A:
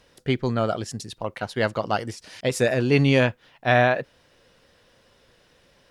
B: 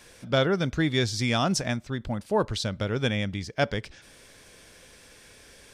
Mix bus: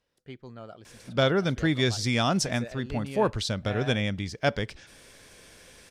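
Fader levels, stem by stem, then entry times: −20.0, 0.0 decibels; 0.00, 0.85 seconds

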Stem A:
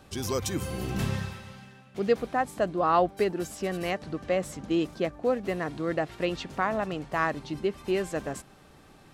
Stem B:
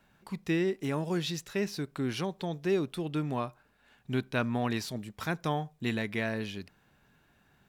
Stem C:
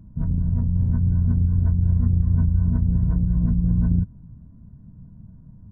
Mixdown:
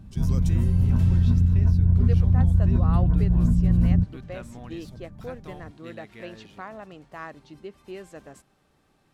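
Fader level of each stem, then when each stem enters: −11.5, −13.5, +0.5 decibels; 0.00, 0.00, 0.00 seconds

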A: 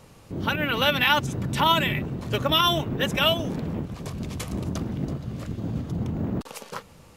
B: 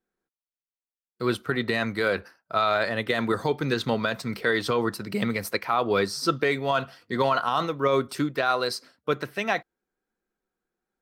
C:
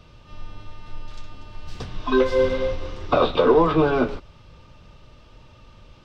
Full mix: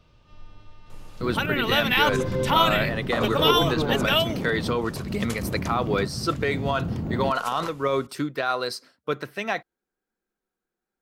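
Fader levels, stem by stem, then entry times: −0.5, −1.5, −9.0 decibels; 0.90, 0.00, 0.00 seconds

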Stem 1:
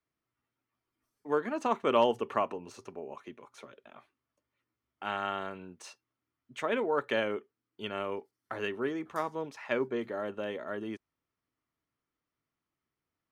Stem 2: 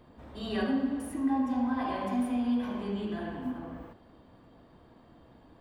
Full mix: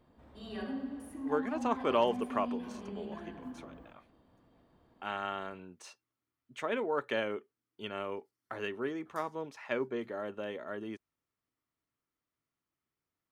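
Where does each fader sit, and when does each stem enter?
−3.0, −9.5 decibels; 0.00, 0.00 seconds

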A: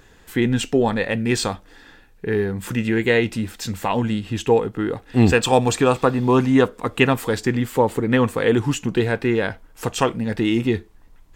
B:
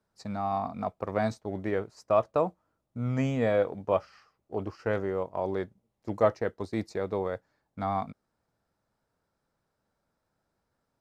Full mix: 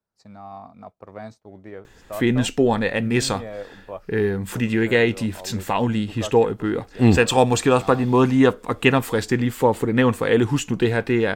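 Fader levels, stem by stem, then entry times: 0.0, −8.5 decibels; 1.85, 0.00 seconds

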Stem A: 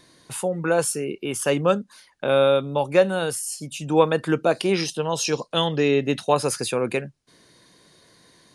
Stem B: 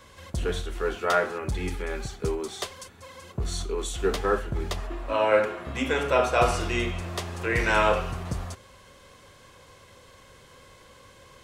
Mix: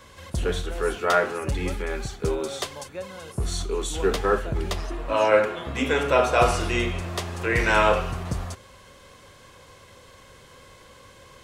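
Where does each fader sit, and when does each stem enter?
−18.5, +2.5 decibels; 0.00, 0.00 seconds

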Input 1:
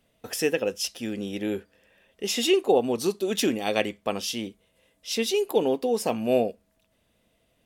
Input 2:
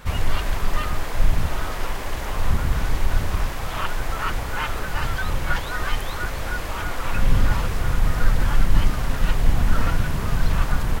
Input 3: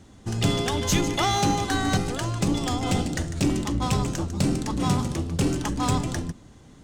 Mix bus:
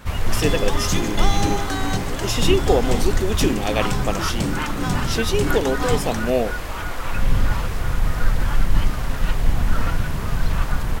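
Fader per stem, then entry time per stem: +2.0, −0.5, −1.0 decibels; 0.00, 0.00, 0.00 seconds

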